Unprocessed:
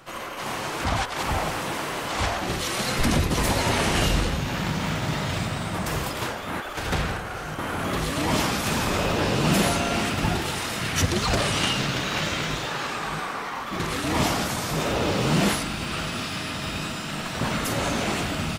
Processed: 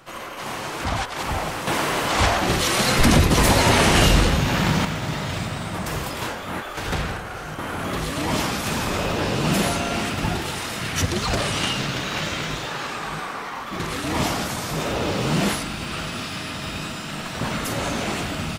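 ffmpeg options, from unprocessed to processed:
-filter_complex "[0:a]asettb=1/sr,asplit=3[a][b][c];[a]atrim=end=1.674[d];[b]atrim=start=1.67:end=4.85,asetpts=PTS-STARTPTS,afade=t=in:d=0.004:c=qsin,afade=t=out:st=3.176:d=0.004:c=qsin,acontrast=73[e];[c]atrim=start=4.846[f];[d][e]acrossfade=d=0.004:c1=hsin:c2=qsin[g];[g][f]acrossfade=d=0.004:c1=qsin:c2=hsin,asettb=1/sr,asplit=3[h][i][j];[h]atrim=end=6.104[k];[i]atrim=start=6.1:end=6.92,asetpts=PTS-STARTPTS,afade=t=in:d=0.004:c=qsin,afade=t=out:st=0.816:d=0.004:c=qsin,asplit=2[l][m];[m]adelay=22,volume=-6dB[n];[l][n]amix=inputs=2:normalize=0,atrim=end_sample=36162[o];[j]atrim=start=6.916[p];[k][o]acrossfade=d=0.004:c1=hsin:c2=qsin[q];[q][p]acrossfade=d=0.004:c1=qsin:c2=hsin"

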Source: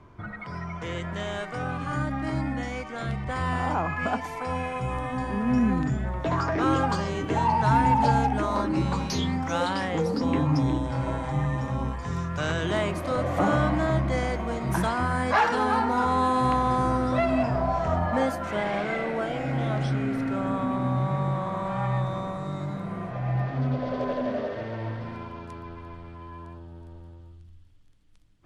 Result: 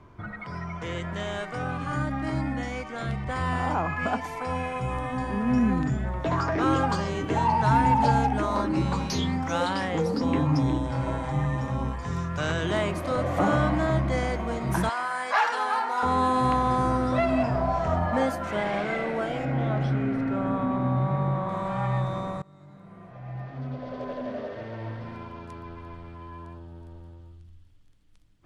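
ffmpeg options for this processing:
-filter_complex "[0:a]asettb=1/sr,asplit=3[a][b][c];[a]atrim=end=14.894[d];[b]atrim=start=14.89:end=16.03,asetpts=PTS-STARTPTS,afade=t=in:d=0.004:c=qsin,afade=t=out:st=1.136:d=0.004:c=qsin,highpass=720[e];[c]atrim=start=16.026[f];[d][e]acrossfade=d=0.004:c1=hsin:c2=qsin[g];[g][f]acrossfade=d=0.004:c1=qsin:c2=hsin,asettb=1/sr,asplit=3[h][i][j];[h]atrim=end=19.454[k];[i]atrim=start=19.45:end=21.49,asetpts=PTS-STARTPTS,afade=t=in:d=0.004:c=qsin,afade=t=out:st=2.036:d=0.004:c=qsin,aemphasis=mode=reproduction:type=75fm[l];[j]atrim=start=21.486[m];[k][l]acrossfade=d=0.004:c1=hsin:c2=qsin[n];[n][m]acrossfade=d=0.004:c1=qsin:c2=hsin,asplit=2[o][p];[o]atrim=end=22.42,asetpts=PTS-STARTPTS,afade=t=out:st=22.416:d=0.004:c=hsin:silence=0.0668344[q];[p]atrim=start=22.42,asetpts=PTS-STARTPTS,afade=t=in:d=3.51:silence=0.0668344[r];[q][r]concat=n=2:v=0:a=1"

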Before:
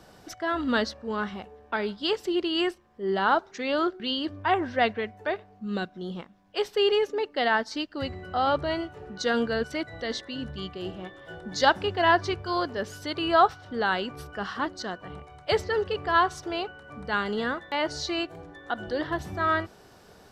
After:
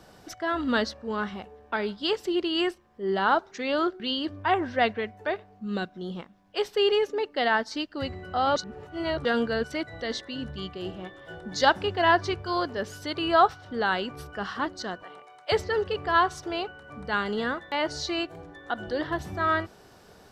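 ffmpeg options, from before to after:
-filter_complex "[0:a]asettb=1/sr,asplit=3[a][b][c];[a]atrim=end=15.034[d];[b]atrim=start=15.03:end=15.52,asetpts=PTS-STARTPTS,afade=t=in:d=0.004:c=qsin,afade=t=out:st=0.486:d=0.004:c=qsin,highpass=500[e];[c]atrim=start=15.516[f];[d][e]acrossfade=d=0.004:c1=hsin:c2=qsin[g];[g][f]acrossfade=d=0.004:c1=qsin:c2=hsin,asplit=3[h][i][j];[h]atrim=end=8.562[k];[i]atrim=start=8.558:end=9.252,asetpts=PTS-STARTPTS,areverse[l];[j]atrim=start=9.248[m];[k][l]acrossfade=d=0.004:c1=hsin:c2=hsin[n];[n][m]acrossfade=d=0.004:c1=hsin:c2=hsin"

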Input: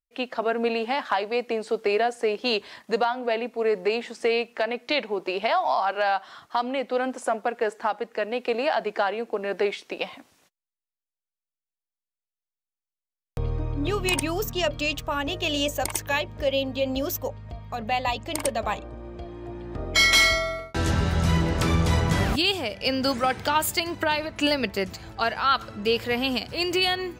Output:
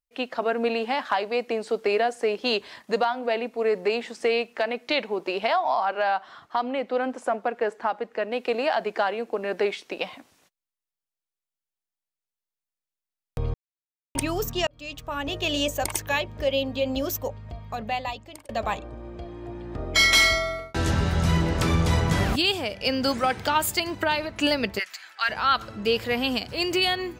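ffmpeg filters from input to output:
-filter_complex "[0:a]asettb=1/sr,asplit=3[a][b][c];[a]atrim=end=5.564[d];[b]atrim=start=5.56:end=8.32,asetpts=PTS-STARTPTS,afade=t=in:d=0.004:c=qsin,afade=t=out:st=2.756:d=0.004:c=qsin,highshelf=f=4.6k:g=-10[e];[c]atrim=start=8.316[f];[d][e]acrossfade=d=0.004:c1=hsin:c2=qsin[g];[g][f]acrossfade=d=0.004:c1=qsin:c2=hsin,asplit=3[h][i][j];[h]afade=t=out:st=24.78:d=0.02[k];[i]highpass=f=1.7k:t=q:w=1.9,afade=t=in:st=24.78:d=0.02,afade=t=out:st=25.28:d=0.02[l];[j]afade=t=in:st=25.28:d=0.02[m];[k][l][m]amix=inputs=3:normalize=0,asplit=5[n][o][p][q][r];[n]atrim=end=13.54,asetpts=PTS-STARTPTS,afade=t=out:st=13.536:d=0.004:c=hsin[s];[o]atrim=start=13.54:end=14.15,asetpts=PTS-STARTPTS,volume=0[t];[p]atrim=start=14.15:end=14.67,asetpts=PTS-STARTPTS,afade=t=in:d=0.004:c=hsin,afade=t=out:st=0.516:d=0.004:c=hsin[u];[q]atrim=start=14.67:end=18.49,asetpts=PTS-STARTPTS,afade=t=in:d=0.71,afade=t=out:st=3.06:d=0.76[v];[r]atrim=start=18.49,asetpts=PTS-STARTPTS,afade=t=in:d=0.004:c=hsin[w];[s][t][u][v][w]concat=n=5:v=0:a=1"

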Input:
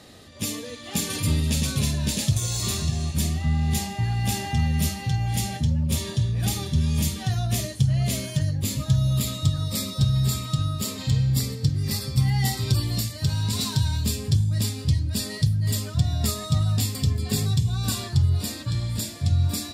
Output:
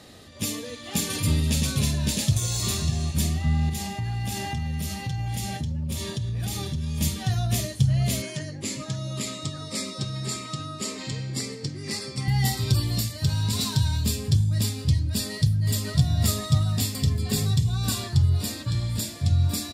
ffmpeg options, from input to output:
-filter_complex "[0:a]asettb=1/sr,asplit=3[a][b][c];[a]atrim=end=3.694[d];[b]atrim=start=3.69:end=7.01,asetpts=PTS-STARTPTS,afade=t=in:d=0.004:c=qsin,afade=t=out:st=3.316:d=0.004:c=qsin,acompressor=threshold=-25dB:ratio=6:attack=3.2:release=140:knee=1:detection=peak[e];[c]atrim=start=7.006[f];[d][e]acrossfade=d=0.004:c1=hsin:c2=qsin[g];[g][f]acrossfade=d=0.004:c1=qsin:c2=hsin,asettb=1/sr,asplit=3[h][i][j];[h]atrim=end=8.224[k];[i]atrim=start=8.22:end=12.28,asetpts=PTS-STARTPTS,afade=t=in:d=0.004:c=qsin,afade=t=out:st=4.056:d=0.004:c=qsin,highpass=240,equalizer=f=350:t=q:w=4:g=7,equalizer=f=2.1k:t=q:w=4:g=5,equalizer=f=3.6k:t=q:w=4:g=-5,lowpass=f=9.1k:w=0.5412,lowpass=f=9.1k:w=1.3066[l];[j]atrim=start=12.276[m];[k][l]acrossfade=d=0.004:c1=hsin:c2=qsin[n];[n][m]acrossfade=d=0.004:c1=qsin:c2=hsin,asplit=2[o][p];[p]afade=t=in:st=15.29:d=0.01,afade=t=out:st=15.85:d=0.01,aecho=0:1:550|1100|1650|2200|2750|3300|3850|4400:0.749894|0.412442|0.226843|0.124764|0.06862|0.037741|0.0207576|0.0114167[q];[o][q]amix=inputs=2:normalize=0"

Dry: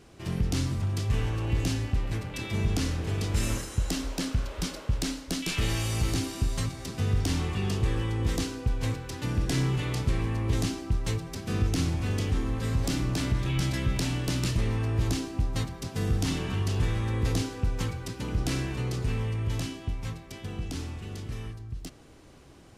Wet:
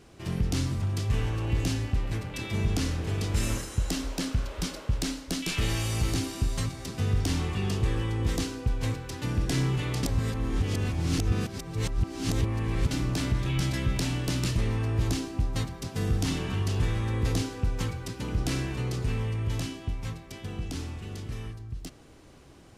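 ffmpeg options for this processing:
-filter_complex "[0:a]asplit=3[a][b][c];[a]atrim=end=10.032[d];[b]atrim=start=10.028:end=12.912,asetpts=PTS-STARTPTS,areverse[e];[c]atrim=start=12.908[f];[d][e]acrossfade=d=0.004:c1=hsin:c2=hsin[g];[g][f]acrossfade=d=0.004:c1=hsin:c2=hsin"

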